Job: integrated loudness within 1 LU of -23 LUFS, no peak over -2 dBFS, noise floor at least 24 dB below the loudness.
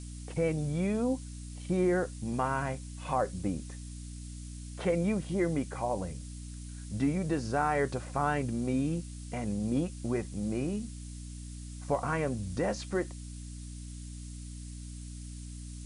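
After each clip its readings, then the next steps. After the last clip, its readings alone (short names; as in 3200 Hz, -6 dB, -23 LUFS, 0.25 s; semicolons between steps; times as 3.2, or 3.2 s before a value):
hum 60 Hz; harmonics up to 300 Hz; hum level -40 dBFS; noise floor -43 dBFS; noise floor target -57 dBFS; loudness -32.5 LUFS; peak -16.5 dBFS; loudness target -23.0 LUFS
-> notches 60/120/180/240/300 Hz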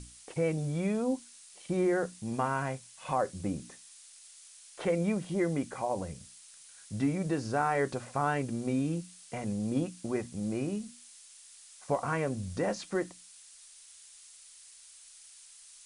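hum none; noise floor -54 dBFS; noise floor target -57 dBFS
-> denoiser 6 dB, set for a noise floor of -54 dBFS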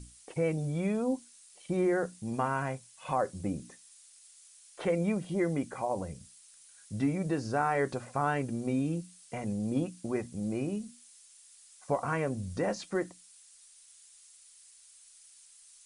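noise floor -58 dBFS; loudness -33.0 LUFS; peak -17.0 dBFS; loudness target -23.0 LUFS
-> gain +10 dB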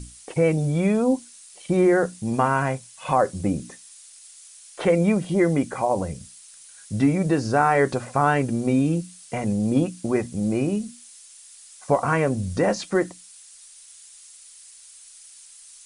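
loudness -23.0 LUFS; peak -7.0 dBFS; noise floor -48 dBFS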